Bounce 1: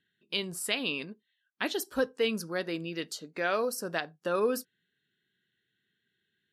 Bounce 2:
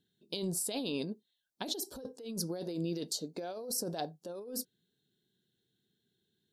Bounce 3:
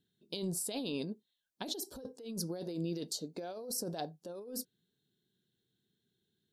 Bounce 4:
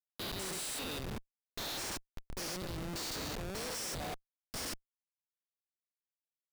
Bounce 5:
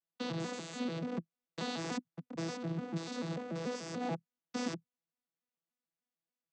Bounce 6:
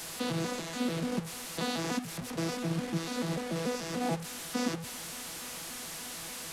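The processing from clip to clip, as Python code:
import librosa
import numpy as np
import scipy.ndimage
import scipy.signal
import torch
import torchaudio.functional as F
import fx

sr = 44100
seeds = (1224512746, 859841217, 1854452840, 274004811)

y1 = fx.band_shelf(x, sr, hz=1800.0, db=-15.5, octaves=1.7)
y1 = fx.notch(y1, sr, hz=1900.0, q=9.3)
y1 = fx.over_compress(y1, sr, threshold_db=-38.0, ratio=-1.0)
y2 = fx.low_shelf(y1, sr, hz=210.0, db=3.0)
y2 = y2 * 10.0 ** (-2.5 / 20.0)
y3 = fx.spec_steps(y2, sr, hold_ms=200)
y3 = fx.weighting(y3, sr, curve='ITU-R 468')
y3 = fx.schmitt(y3, sr, flips_db=-43.5)
y3 = y3 * 10.0 ** (4.5 / 20.0)
y4 = fx.vocoder_arp(y3, sr, chord='bare fifth', root=52, every_ms=146)
y4 = fx.rider(y4, sr, range_db=4, speed_s=0.5)
y4 = y4 * 10.0 ** (4.0 / 20.0)
y5 = fx.delta_mod(y4, sr, bps=64000, step_db=-39.0)
y5 = y5 * 10.0 ** (5.0 / 20.0)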